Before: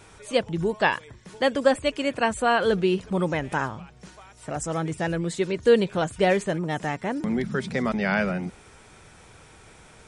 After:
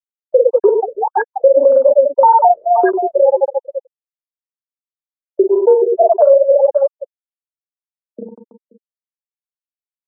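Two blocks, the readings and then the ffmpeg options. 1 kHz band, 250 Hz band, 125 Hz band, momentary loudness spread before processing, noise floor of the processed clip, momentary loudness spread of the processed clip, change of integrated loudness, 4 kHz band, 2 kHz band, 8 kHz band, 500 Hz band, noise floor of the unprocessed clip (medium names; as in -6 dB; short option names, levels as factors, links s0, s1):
+13.0 dB, -1.5 dB, under -25 dB, 8 LU, under -85 dBFS, 9 LU, +12.5 dB, under -40 dB, no reading, under -40 dB, +13.0 dB, -51 dBFS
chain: -filter_complex "[0:a]afftfilt=real='re*pow(10,18/40*sin(2*PI*(0.89*log(max(b,1)*sr/1024/100)/log(2)-(-0.63)*(pts-256)/sr)))':imag='im*pow(10,18/40*sin(2*PI*(0.89*log(max(b,1)*sr/1024/100)/log(2)-(-0.63)*(pts-256)/sr)))':win_size=1024:overlap=0.75,acrossover=split=6100[s0][s1];[s1]acompressor=threshold=0.001:ratio=4:attack=1:release=60[s2];[s0][s2]amix=inputs=2:normalize=0,afftfilt=real='re*gte(hypot(re,im),1.26)':imag='im*gte(hypot(re,im),1.26)':win_size=1024:overlap=0.75,afwtdn=0.0447,agate=range=0.00178:threshold=0.01:ratio=16:detection=peak,asplit=2[s3][s4];[s4]aecho=0:1:40|100|190|325|527.5:0.631|0.398|0.251|0.158|0.1[s5];[s3][s5]amix=inputs=2:normalize=0,acompressor=threshold=0.0562:ratio=16,highpass=f=460:w=0.5412,highpass=f=460:w=1.3066,alimiter=level_in=16.8:limit=0.891:release=50:level=0:latency=1,afftfilt=real='re*lt(b*sr/1024,600*pow(1700/600,0.5+0.5*sin(2*PI*1.8*pts/sr)))':imag='im*lt(b*sr/1024,600*pow(1700/600,0.5+0.5*sin(2*PI*1.8*pts/sr)))':win_size=1024:overlap=0.75,volume=0.891"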